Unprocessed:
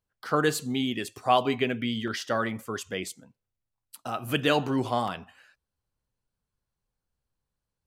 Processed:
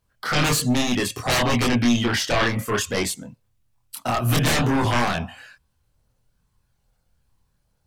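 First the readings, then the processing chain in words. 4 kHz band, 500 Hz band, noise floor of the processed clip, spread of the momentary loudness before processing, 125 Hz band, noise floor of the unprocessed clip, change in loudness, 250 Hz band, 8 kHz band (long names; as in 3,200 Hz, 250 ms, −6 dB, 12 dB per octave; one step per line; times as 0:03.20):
+8.0 dB, +2.5 dB, −70 dBFS, 11 LU, +12.0 dB, below −85 dBFS, +6.5 dB, +7.5 dB, +13.0 dB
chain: sine wavefolder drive 17 dB, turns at −9 dBFS
multi-voice chorus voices 6, 0.3 Hz, delay 25 ms, depth 1 ms
level −5 dB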